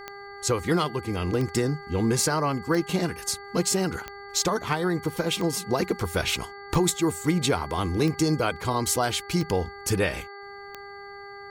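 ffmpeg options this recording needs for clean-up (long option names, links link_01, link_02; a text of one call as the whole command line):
ffmpeg -i in.wav -af "adeclick=threshold=4,bandreject=frequency=401.1:width_type=h:width=4,bandreject=frequency=802.2:width_type=h:width=4,bandreject=frequency=1203.3:width_type=h:width=4,bandreject=frequency=1604.4:width_type=h:width=4,bandreject=frequency=2005.5:width_type=h:width=4,bandreject=frequency=4500:width=30" out.wav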